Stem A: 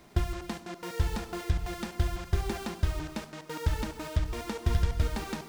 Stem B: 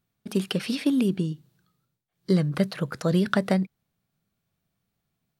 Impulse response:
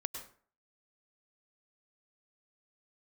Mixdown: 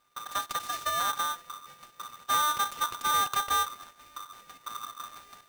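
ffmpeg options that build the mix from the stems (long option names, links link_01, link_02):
-filter_complex "[0:a]flanger=delay=3.1:depth=5.5:regen=-63:speed=0.87:shape=triangular,volume=-10.5dB[link_01];[1:a]asubboost=boost=7:cutoff=150,asoftclip=type=tanh:threshold=-17dB,volume=-5dB[link_02];[link_01][link_02]amix=inputs=2:normalize=0,aeval=exprs='abs(val(0))':channel_layout=same,aeval=exprs='val(0)*sgn(sin(2*PI*1200*n/s))':channel_layout=same"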